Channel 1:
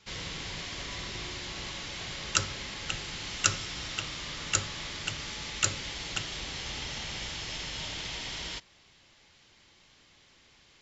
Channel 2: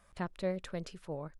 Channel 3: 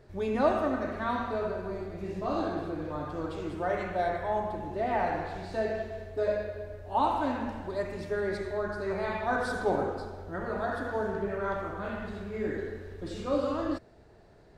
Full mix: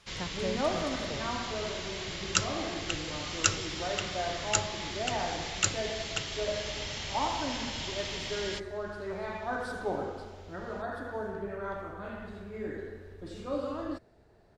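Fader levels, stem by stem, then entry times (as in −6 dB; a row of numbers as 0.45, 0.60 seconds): −0.5, −1.5, −5.0 decibels; 0.00, 0.00, 0.20 seconds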